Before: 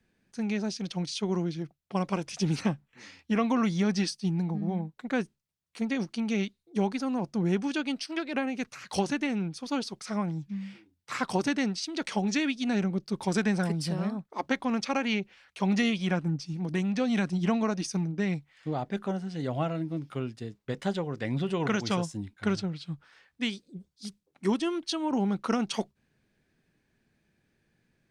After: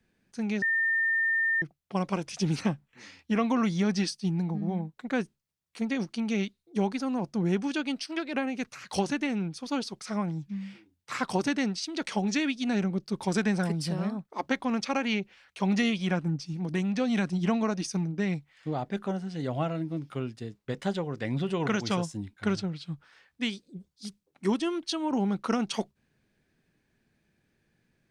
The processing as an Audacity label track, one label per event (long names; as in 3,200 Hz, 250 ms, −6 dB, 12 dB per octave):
0.620000	1.620000	beep over 1,810 Hz −23 dBFS